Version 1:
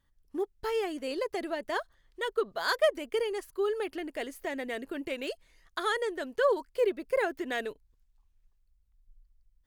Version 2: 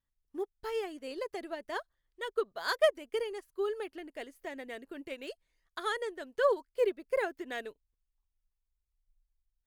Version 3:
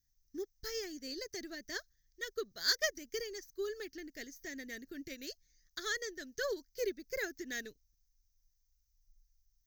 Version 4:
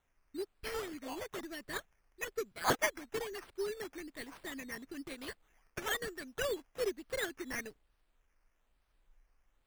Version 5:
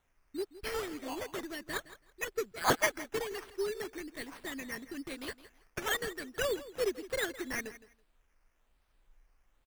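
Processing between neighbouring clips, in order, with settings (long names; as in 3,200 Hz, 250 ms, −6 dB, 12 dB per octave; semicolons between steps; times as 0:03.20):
expander for the loud parts 1.5 to 1, over −50 dBFS
drawn EQ curve 120 Hz 0 dB, 310 Hz −7 dB, 970 Hz −27 dB, 1,800 Hz −4 dB, 2,800 Hz −15 dB, 6,100 Hz +15 dB, 9,400 Hz −24 dB, 14,000 Hz +8 dB; level +6 dB
sample-and-hold swept by an LFO 9×, swing 60% 1.1 Hz; level +1 dB
repeating echo 164 ms, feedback 19%, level −16 dB; level +3 dB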